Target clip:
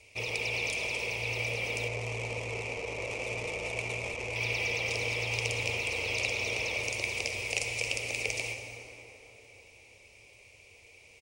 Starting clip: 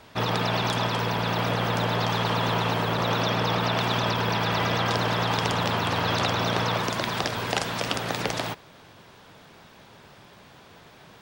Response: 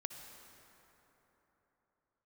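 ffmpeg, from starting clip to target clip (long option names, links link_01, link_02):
-filter_complex "[1:a]atrim=start_sample=2205[link_01];[0:a][link_01]afir=irnorm=-1:irlink=0,asettb=1/sr,asplit=3[link_02][link_03][link_04];[link_02]atrim=end=1.884[link_05];[link_03]atrim=start=1.88:end=4.36,asetpts=PTS-STARTPTS,afade=type=in:duration=0.004:curve=qsin,afade=type=out:start_time=2.476:duration=0.004:curve=qsin,adynamicsmooth=sensitivity=2.5:basefreq=590[link_06];[link_04]atrim=start=4.356[link_07];[link_05][link_06]acrossfade=duration=0.004:curve1=hsin:curve2=qsin[link_08];[link_08][link_07]acrossfade=duration=0.004:curve1=qsin:curve2=hsin,firequalizer=gain_entry='entry(100,0);entry(150,-20);entry(480,0);entry(690,-10);entry(1600,-24);entry(2300,14);entry(3400,-7);entry(5600,5);entry(9500,8);entry(14000,-7)':delay=0.05:min_phase=1,volume=-3dB"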